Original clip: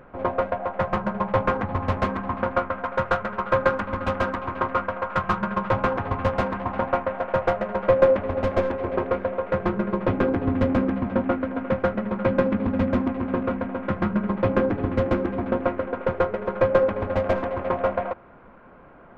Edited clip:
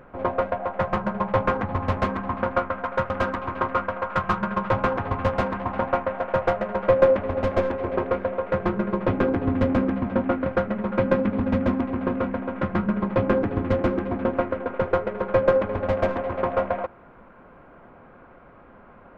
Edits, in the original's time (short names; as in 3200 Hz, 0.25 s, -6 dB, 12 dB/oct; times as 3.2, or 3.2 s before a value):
3.1–4.1 cut
11.46–11.73 cut